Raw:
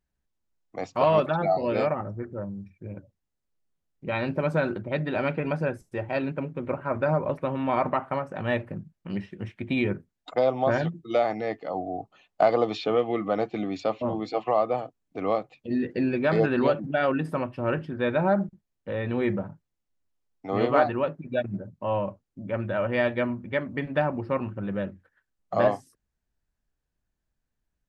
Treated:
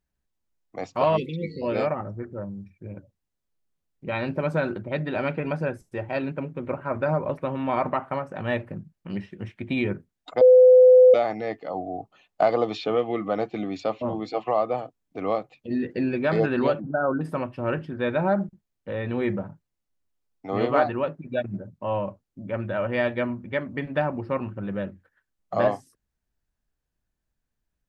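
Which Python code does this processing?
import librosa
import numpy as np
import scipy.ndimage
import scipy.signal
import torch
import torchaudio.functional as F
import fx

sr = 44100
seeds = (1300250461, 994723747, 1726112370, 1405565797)

y = fx.spec_erase(x, sr, start_s=1.17, length_s=0.45, low_hz=520.0, high_hz=1900.0)
y = fx.brickwall_lowpass(y, sr, high_hz=1600.0, at=(16.81, 17.21))
y = fx.edit(y, sr, fx.bleep(start_s=10.41, length_s=0.73, hz=507.0, db=-9.0), tone=tone)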